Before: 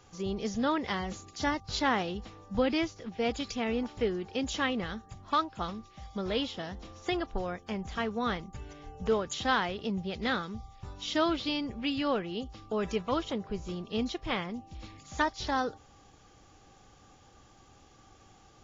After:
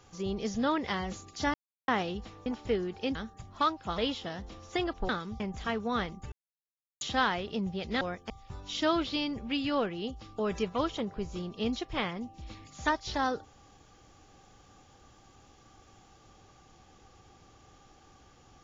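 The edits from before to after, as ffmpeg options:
-filter_complex "[0:a]asplit=12[a][b][c][d][e][f][g][h][i][j][k][l];[a]atrim=end=1.54,asetpts=PTS-STARTPTS,afade=t=out:st=1.536:d=0.004:c=hsin[m];[b]atrim=start=1.54:end=1.88,asetpts=PTS-STARTPTS,volume=0[n];[c]atrim=start=1.88:end=2.462,asetpts=PTS-STARTPTS,afade=t=in:d=0.004:c=hsin[o];[d]atrim=start=3.778:end=4.472[p];[e]atrim=start=4.868:end=5.702[q];[f]atrim=start=6.308:end=7.422[r];[g]atrim=start=10.318:end=10.632[s];[h]atrim=start=7.708:end=8.63,asetpts=PTS-STARTPTS,afade=t=out:st=0.918:d=0.004:c=hsin[t];[i]atrim=start=8.63:end=9.32,asetpts=PTS-STARTPTS,volume=0[u];[j]atrim=start=9.32:end=10.322,asetpts=PTS-STARTPTS,afade=t=in:d=0.004:c=hsin[v];[k]atrim=start=7.418:end=7.712[w];[l]atrim=start=10.628[x];[m][n][o]concat=n=3:v=0:a=1[y];[y][p]acrossfade=d=0.004:c1=hsin:c2=hsin[z];[z][q]acrossfade=d=0.004:c1=hsin:c2=hsin[aa];[aa][r]acrossfade=d=0.004:c1=hsin:c2=hsin[ab];[ab][s]acrossfade=d=0.004:c1=hsin:c2=hsin[ac];[t][u][v]concat=n=3:v=0:a=1[ad];[ac][ad]acrossfade=d=0.004:c1=hsin:c2=hsin[ae];[ae][w]acrossfade=d=0.004:c1=hsin:c2=hsin[af];[af][x]acrossfade=d=0.004:c1=hsin:c2=hsin"

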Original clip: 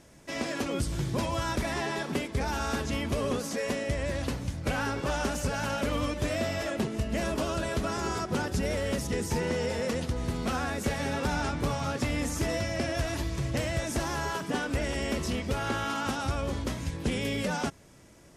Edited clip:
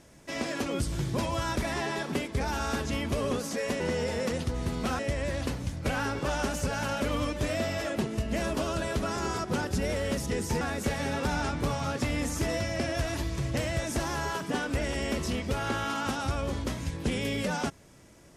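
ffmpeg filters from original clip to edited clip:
-filter_complex "[0:a]asplit=4[a][b][c][d];[a]atrim=end=3.802[e];[b]atrim=start=9.418:end=10.612[f];[c]atrim=start=3.798:end=9.422[g];[d]atrim=start=10.608[h];[e][f]acrossfade=d=0.004:c1=hsin:c2=hsin[i];[i][g]acrossfade=d=0.004:c1=hsin:c2=hsin[j];[j][h]acrossfade=d=0.004:c1=hsin:c2=hsin"

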